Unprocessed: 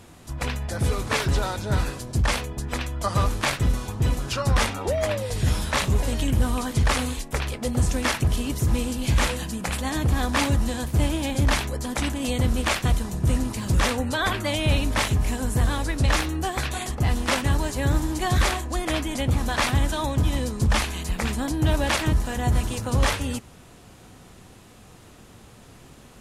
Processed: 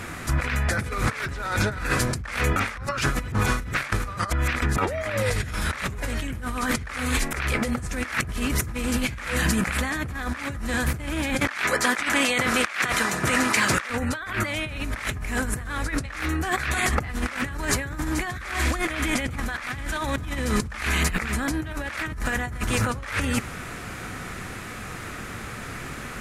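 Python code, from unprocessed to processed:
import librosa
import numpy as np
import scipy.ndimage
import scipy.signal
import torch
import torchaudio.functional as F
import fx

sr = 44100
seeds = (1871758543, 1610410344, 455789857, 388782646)

y = fx.weighting(x, sr, curve='A', at=(11.4, 13.9))
y = fx.echo_wet_highpass(y, sr, ms=98, feedback_pct=52, hz=2600.0, wet_db=-10.0, at=(18.3, 20.83))
y = fx.edit(y, sr, fx.reverse_span(start_s=2.56, length_s=2.22), tone=tone)
y = fx.band_shelf(y, sr, hz=1700.0, db=10.0, octaves=1.2)
y = fx.over_compress(y, sr, threshold_db=-31.0, ratio=-1.0)
y = y * 10.0 ** (3.5 / 20.0)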